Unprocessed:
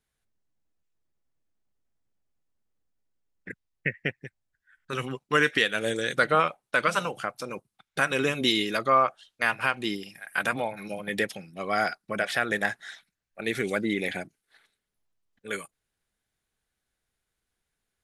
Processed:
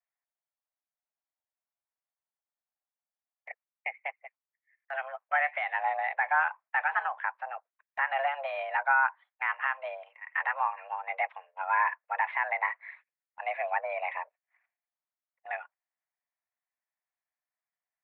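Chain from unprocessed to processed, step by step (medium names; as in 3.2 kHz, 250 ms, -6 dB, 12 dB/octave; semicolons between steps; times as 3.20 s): partial rectifier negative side -3 dB; peak limiter -16 dBFS, peak gain reduction 6 dB; mistuned SSB +280 Hz 360–2000 Hz; gate -55 dBFS, range -8 dB; dynamic bell 1 kHz, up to +4 dB, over -41 dBFS, Q 2.2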